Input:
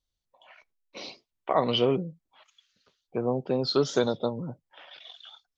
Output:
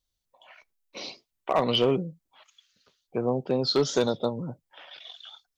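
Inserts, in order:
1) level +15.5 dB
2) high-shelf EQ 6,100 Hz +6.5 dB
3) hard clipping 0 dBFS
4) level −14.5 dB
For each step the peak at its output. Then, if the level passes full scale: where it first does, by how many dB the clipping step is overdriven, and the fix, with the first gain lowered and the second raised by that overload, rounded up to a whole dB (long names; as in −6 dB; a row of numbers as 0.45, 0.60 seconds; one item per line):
+6.0, +6.0, 0.0, −14.5 dBFS
step 1, 6.0 dB
step 1 +9.5 dB, step 4 −8.5 dB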